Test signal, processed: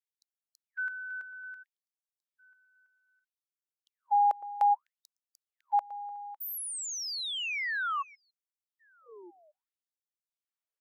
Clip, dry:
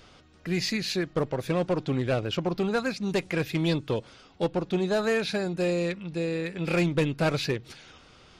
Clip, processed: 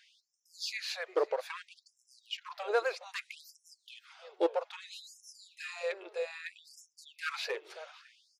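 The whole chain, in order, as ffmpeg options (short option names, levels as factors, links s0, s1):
-filter_complex "[0:a]highshelf=f=2300:g=-8.5,asplit=2[s0][s1];[s1]adelay=554,lowpass=f=4100:p=1,volume=0.112,asplit=2[s2][s3];[s3]adelay=554,lowpass=f=4100:p=1,volume=0.25[s4];[s2][s4]amix=inputs=2:normalize=0[s5];[s0][s5]amix=inputs=2:normalize=0,afftfilt=real='re*gte(b*sr/1024,340*pow(5300/340,0.5+0.5*sin(2*PI*0.62*pts/sr)))':imag='im*gte(b*sr/1024,340*pow(5300/340,0.5+0.5*sin(2*PI*0.62*pts/sr)))':win_size=1024:overlap=0.75"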